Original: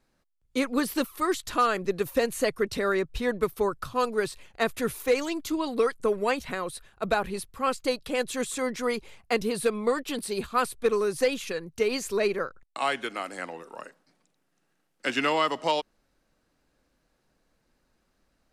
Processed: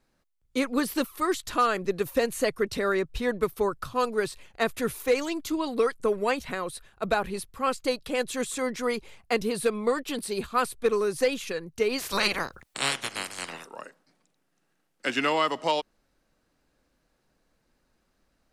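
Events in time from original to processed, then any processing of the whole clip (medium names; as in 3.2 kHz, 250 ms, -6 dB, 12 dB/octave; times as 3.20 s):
11.98–13.65 s: spectral peaks clipped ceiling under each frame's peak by 28 dB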